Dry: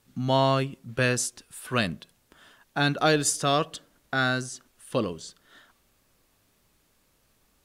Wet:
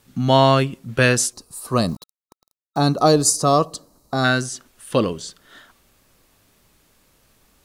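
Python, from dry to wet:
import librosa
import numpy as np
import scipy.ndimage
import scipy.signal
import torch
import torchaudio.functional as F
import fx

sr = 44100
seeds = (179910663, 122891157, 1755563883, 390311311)

y = fx.sample_gate(x, sr, floor_db=-44.0, at=(1.88, 2.79))
y = fx.spec_box(y, sr, start_s=1.33, length_s=2.91, low_hz=1300.0, high_hz=3800.0, gain_db=-15)
y = y * 10.0 ** (8.0 / 20.0)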